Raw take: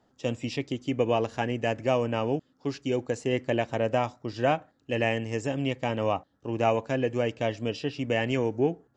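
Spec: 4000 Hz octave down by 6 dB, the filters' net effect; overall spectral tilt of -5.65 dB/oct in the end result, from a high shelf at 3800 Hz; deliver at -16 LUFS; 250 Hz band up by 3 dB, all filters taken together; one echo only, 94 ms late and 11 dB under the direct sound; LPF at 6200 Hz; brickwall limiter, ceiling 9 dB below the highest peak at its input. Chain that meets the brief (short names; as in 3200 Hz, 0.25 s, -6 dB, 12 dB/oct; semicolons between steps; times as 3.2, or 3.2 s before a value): LPF 6200 Hz; bell 250 Hz +3.5 dB; high shelf 3800 Hz -8 dB; bell 4000 Hz -4.5 dB; limiter -19.5 dBFS; echo 94 ms -11 dB; gain +15.5 dB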